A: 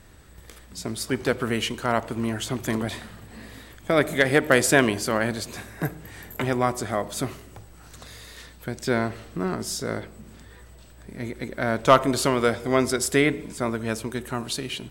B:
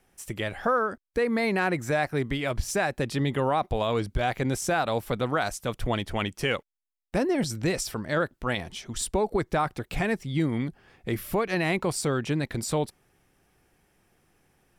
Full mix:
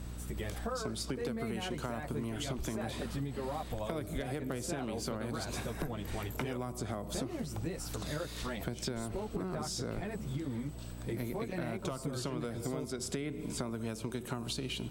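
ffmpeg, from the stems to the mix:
-filter_complex "[0:a]equalizer=f=1.8k:w=3.2:g=-8,acrossover=split=270|7900[a][b][c];[a]acompressor=threshold=-32dB:ratio=4[d];[b]acompressor=threshold=-34dB:ratio=4[e];[c]acompressor=threshold=-51dB:ratio=4[f];[d][e][f]amix=inputs=3:normalize=0,aeval=exprs='val(0)+0.00562*(sin(2*PI*60*n/s)+sin(2*PI*2*60*n/s)/2+sin(2*PI*3*60*n/s)/3+sin(2*PI*4*60*n/s)/4+sin(2*PI*5*60*n/s)/5)':c=same,volume=2.5dB[g];[1:a]equalizer=f=3.1k:w=0.32:g=-7,asplit=2[h][i];[i]adelay=11.1,afreqshift=-2.8[j];[h][j]amix=inputs=2:normalize=1,volume=-1.5dB[k];[g][k]amix=inputs=2:normalize=0,acompressor=threshold=-34dB:ratio=6"

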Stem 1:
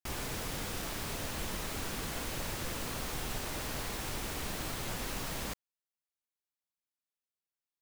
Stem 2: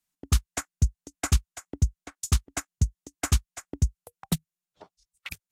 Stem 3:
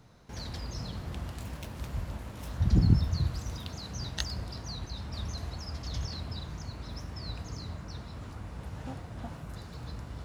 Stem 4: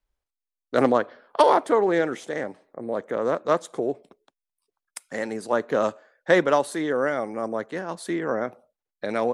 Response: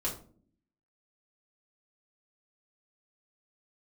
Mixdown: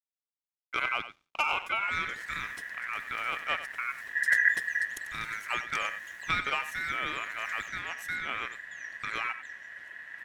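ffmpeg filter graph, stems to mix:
-filter_complex "[0:a]acrossover=split=1900[a][b];[a]aeval=exprs='val(0)*(1-0.7/2+0.7/2*cos(2*PI*1.4*n/s))':c=same[c];[b]aeval=exprs='val(0)*(1-0.7/2-0.7/2*cos(2*PI*1.4*n/s))':c=same[d];[c][d]amix=inputs=2:normalize=0,adelay=2150,volume=-15.5dB[e];[1:a]adelay=2000,volume=-8dB[f];[2:a]equalizer=f=160:w=1.5:g=12.5,aecho=1:1:2.6:0.34,adelay=1550,volume=-5.5dB[g];[3:a]acompressor=threshold=-35dB:ratio=1.5,aeval=exprs='sgn(val(0))*max(abs(val(0))-0.00266,0)':c=same,volume=-1dB,asplit=3[h][i][j];[i]volume=-12.5dB[k];[j]apad=whole_len=331625[l];[f][l]sidechaincompress=threshold=-48dB:ratio=8:attack=9.2:release=154[m];[k]aecho=0:1:93:1[n];[e][m][g][h][n]amix=inputs=5:normalize=0,equalizer=f=3k:w=1.5:g=-3,bandreject=f=6.5k:w=20,aeval=exprs='val(0)*sin(2*PI*1800*n/s)':c=same"

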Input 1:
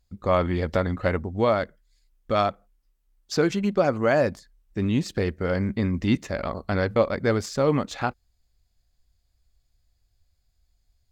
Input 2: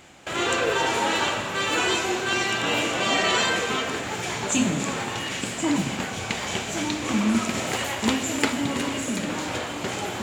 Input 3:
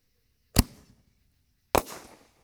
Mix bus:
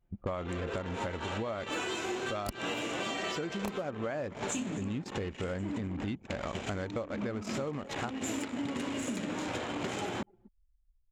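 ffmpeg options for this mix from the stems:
-filter_complex "[0:a]volume=0dB,asplit=3[a][b][c];[b]volume=-20.5dB[d];[1:a]adynamicequalizer=threshold=0.0224:dfrequency=300:dqfactor=0.78:tfrequency=300:tqfactor=0.78:attack=5:release=100:ratio=0.375:range=2:mode=boostabove:tftype=bell,volume=0.5dB,asplit=2[e][f];[f]volume=-16dB[g];[2:a]adelay=1900,volume=-5dB[h];[c]apad=whole_len=451094[i];[e][i]sidechaincompress=threshold=-33dB:ratio=4:attack=16:release=210[j];[a][j]amix=inputs=2:normalize=0,bandreject=f=4.5k:w=20,alimiter=limit=-12.5dB:level=0:latency=1:release=345,volume=0dB[k];[d][g]amix=inputs=2:normalize=0,aecho=0:1:251:1[l];[h][k][l]amix=inputs=3:normalize=0,anlmdn=25.1,acompressor=threshold=-32dB:ratio=10"

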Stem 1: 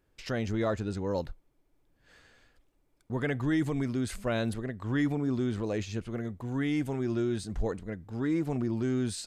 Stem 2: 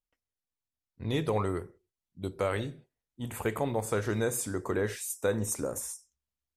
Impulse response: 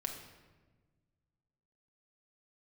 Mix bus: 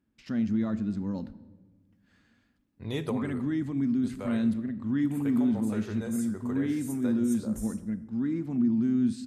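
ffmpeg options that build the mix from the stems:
-filter_complex "[0:a]firequalizer=gain_entry='entry(150,0);entry(220,14);entry(410,-9);entry(1100,-4);entry(9200,-9)':delay=0.05:min_phase=1,volume=-6.5dB,asplit=3[a][b][c];[b]volume=-7dB[d];[1:a]adelay=1800,volume=-4dB,asplit=2[e][f];[f]volume=-11.5dB[g];[c]apad=whole_len=368762[h];[e][h]sidechaincompress=threshold=-38dB:ratio=8:attack=7.5:release=1080[i];[2:a]atrim=start_sample=2205[j];[d][g]amix=inputs=2:normalize=0[k];[k][j]afir=irnorm=-1:irlink=0[l];[a][i][l]amix=inputs=3:normalize=0,highpass=57"

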